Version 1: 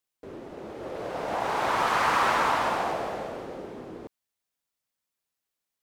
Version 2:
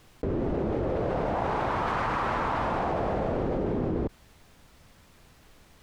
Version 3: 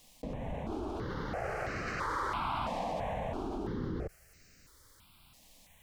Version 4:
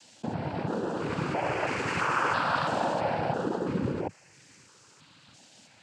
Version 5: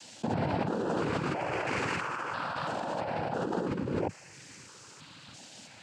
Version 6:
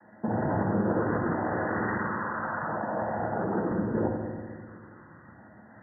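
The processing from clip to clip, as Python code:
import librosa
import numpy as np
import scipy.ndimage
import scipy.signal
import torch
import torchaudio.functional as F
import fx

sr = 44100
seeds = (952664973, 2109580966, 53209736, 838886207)

y1 = fx.riaa(x, sr, side='playback')
y1 = fx.env_flatten(y1, sr, amount_pct=100)
y1 = F.gain(torch.from_numpy(y1), -6.5).numpy()
y2 = fx.high_shelf(y1, sr, hz=2300.0, db=11.0)
y2 = fx.phaser_held(y2, sr, hz=3.0, low_hz=380.0, high_hz=3400.0)
y2 = F.gain(torch.from_numpy(y2), -6.0).numpy()
y3 = fx.noise_vocoder(y2, sr, seeds[0], bands=8)
y3 = F.gain(torch.from_numpy(y3), 8.0).numpy()
y4 = fx.over_compress(y3, sr, threshold_db=-34.0, ratio=-1.0)
y4 = F.gain(torch.from_numpy(y4), 1.5).numpy()
y5 = fx.brickwall_lowpass(y4, sr, high_hz=2000.0)
y5 = fx.rev_fdn(y5, sr, rt60_s=1.8, lf_ratio=1.35, hf_ratio=0.9, size_ms=28.0, drr_db=0.5)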